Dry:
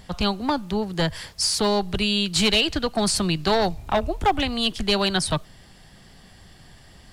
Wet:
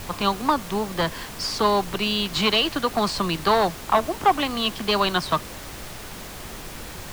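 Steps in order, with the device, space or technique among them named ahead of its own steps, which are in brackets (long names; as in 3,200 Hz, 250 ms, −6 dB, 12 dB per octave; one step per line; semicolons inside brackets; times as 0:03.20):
horn gramophone (band-pass filter 200–4,200 Hz; parametric band 1,100 Hz +11 dB 0.41 octaves; tape wow and flutter; pink noise bed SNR 12 dB)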